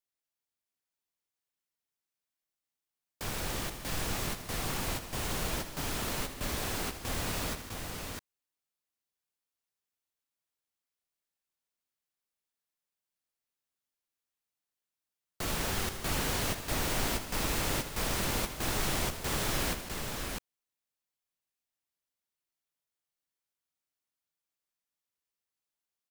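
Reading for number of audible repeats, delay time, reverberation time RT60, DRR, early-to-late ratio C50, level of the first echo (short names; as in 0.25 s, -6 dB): 4, 80 ms, none, none, none, -11.5 dB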